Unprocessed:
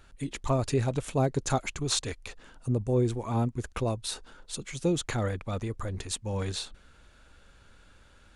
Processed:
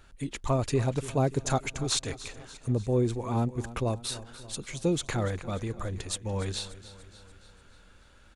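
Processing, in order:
repeating echo 291 ms, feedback 56%, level −16 dB

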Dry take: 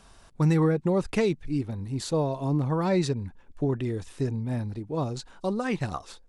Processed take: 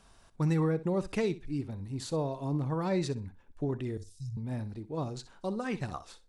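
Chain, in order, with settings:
0:03.97–0:04.37: Chebyshev band-stop filter 120–4,900 Hz, order 3
flutter between parallel walls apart 10.7 metres, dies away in 0.24 s
level −6 dB

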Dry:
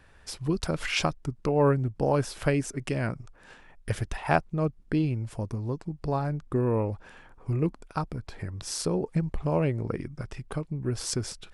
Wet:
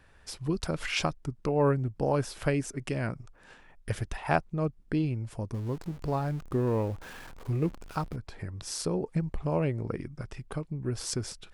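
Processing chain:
0:05.54–0:08.16: converter with a step at zero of −40 dBFS
level −2.5 dB

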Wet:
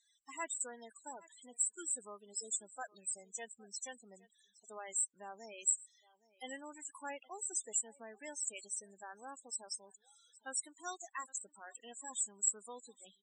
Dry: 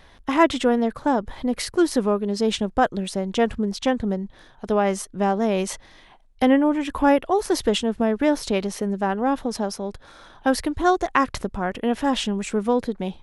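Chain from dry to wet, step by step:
resonant band-pass 7,800 Hz, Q 6.6
single-tap delay 815 ms −21.5 dB
spectral peaks only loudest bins 16
level +11.5 dB

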